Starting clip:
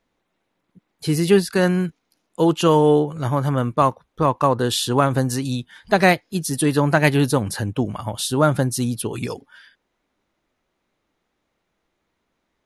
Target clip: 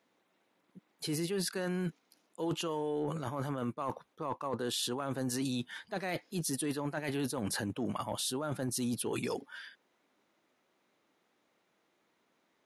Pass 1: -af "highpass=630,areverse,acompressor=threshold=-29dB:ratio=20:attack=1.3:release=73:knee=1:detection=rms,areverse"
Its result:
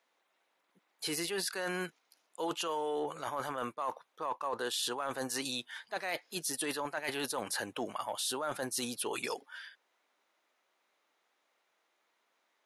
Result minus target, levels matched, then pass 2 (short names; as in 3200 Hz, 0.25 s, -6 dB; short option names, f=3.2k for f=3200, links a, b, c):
250 Hz band -6.5 dB
-af "highpass=200,areverse,acompressor=threshold=-29dB:ratio=20:attack=1.3:release=73:knee=1:detection=rms,areverse"